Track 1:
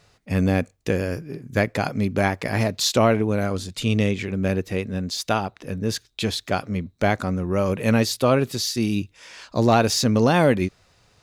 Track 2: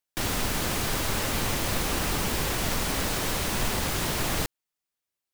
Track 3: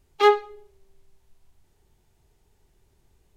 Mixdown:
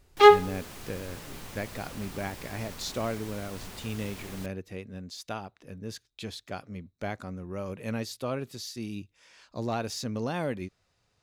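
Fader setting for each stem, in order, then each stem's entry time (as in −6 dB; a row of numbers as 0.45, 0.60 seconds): −14.0, −16.5, +2.5 decibels; 0.00, 0.00, 0.00 seconds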